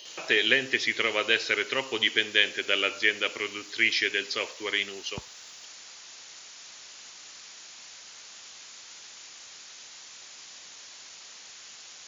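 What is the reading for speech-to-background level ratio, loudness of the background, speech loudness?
18.5 dB, -44.0 LUFS, -25.5 LUFS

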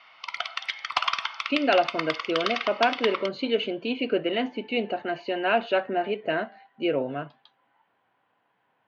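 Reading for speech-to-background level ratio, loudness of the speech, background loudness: 3.0 dB, -27.0 LUFS, -30.0 LUFS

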